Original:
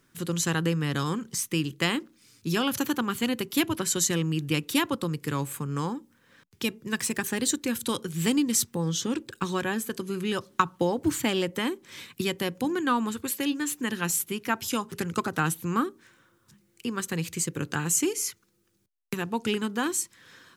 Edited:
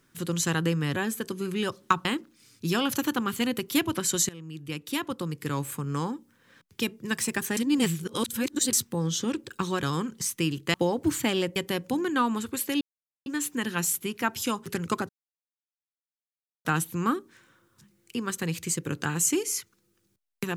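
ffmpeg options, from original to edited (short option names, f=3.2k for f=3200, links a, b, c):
-filter_complex "[0:a]asplit=11[a][b][c][d][e][f][g][h][i][j][k];[a]atrim=end=0.962[l];[b]atrim=start=9.648:end=10.742[m];[c]atrim=start=1.868:end=4.11,asetpts=PTS-STARTPTS,afade=t=out:st=2.238:d=0.004:c=hsin:silence=0.1[n];[d]atrim=start=4.11:end=7.392,asetpts=PTS-STARTPTS,afade=t=in:d=1.38:silence=0.1[o];[e]atrim=start=7.388:end=8.552,asetpts=PTS-STARTPTS,areverse[p];[f]atrim=start=8.548:end=9.652[q];[g]atrim=start=0.958:end=1.872[r];[h]atrim=start=10.738:end=11.562[s];[i]atrim=start=12.268:end=13.52,asetpts=PTS-STARTPTS,afade=t=out:st=1.248:d=0.004:c=hsin,apad=pad_dur=0.45[t];[j]atrim=start=13.52:end=15.35,asetpts=PTS-STARTPTS,afade=t=in:d=0.004:c=hsin,afade=t=out:st=1.826:d=0.004:c=hsin,apad=pad_dur=1.56[u];[k]atrim=start=15.35,asetpts=PTS-STARTPTS,afade=t=in:d=0.004:c=hsin[v];[l][m]acrossfade=d=0.004:c1=hsin:c2=hsin[w];[n][o]concat=n=2:v=0:a=1[x];[w][x]acrossfade=d=0.004:c1=hsin:c2=hsin[y];[y][p]acrossfade=d=0.004:c1=hsin:c2=hsin[z];[z][q]acrossfade=d=0.004:c1=hsin:c2=hsin[aa];[aa][r]acrossfade=d=0.004:c1=hsin:c2=hsin[ab];[ab][s]acrossfade=d=0.004:c1=hsin:c2=hsin[ac];[t][u][v]concat=n=3:v=0:a=1[ad];[ac][ad]acrossfade=d=0.004:c1=hsin:c2=hsin"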